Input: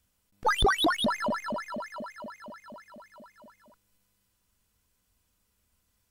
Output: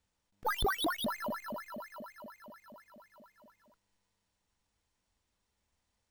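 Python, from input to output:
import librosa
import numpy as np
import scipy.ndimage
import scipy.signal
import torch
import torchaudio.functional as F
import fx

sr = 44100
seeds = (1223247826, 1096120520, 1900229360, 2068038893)

y = np.repeat(x[::3], 3)[:len(x)]
y = y * librosa.db_to_amplitude(-8.0)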